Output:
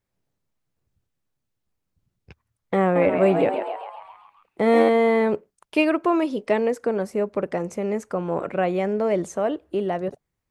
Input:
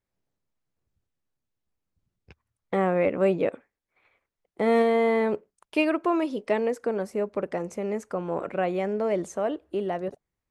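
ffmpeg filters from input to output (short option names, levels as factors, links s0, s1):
-filter_complex "[0:a]equalizer=f=130:w=1.5:g=3.5,asettb=1/sr,asplit=3[s0][s1][s2];[s0]atrim=end=2.824[s3];[s1]atrim=start=2.82:end=4.89,asetpts=PTS-STARTPTS,afade=t=in:d=0.004:c=qsin,afade=t=out:st=2.066:d=0.004:c=qsin,asplit=8[s4][s5][s6][s7][s8][s9][s10][s11];[s5]adelay=134,afreqshift=94,volume=0.447[s12];[s6]adelay=268,afreqshift=188,volume=0.251[s13];[s7]adelay=402,afreqshift=282,volume=0.14[s14];[s8]adelay=536,afreqshift=376,volume=0.0785[s15];[s9]adelay=670,afreqshift=470,volume=0.0442[s16];[s10]adelay=804,afreqshift=564,volume=0.0245[s17];[s11]adelay=938,afreqshift=658,volume=0.0138[s18];[s4][s12][s13][s14][s15][s16][s17][s18]amix=inputs=8:normalize=0,atrim=end_sample=91287[s19];[s2]atrim=start=4.886[s20];[s3][s19]acrossfade=d=0.004:c1=hsin:c2=qsin[s21];[s21][s20]acrossfade=d=0.004:c1=qsin:c2=hsin,volume=1.5"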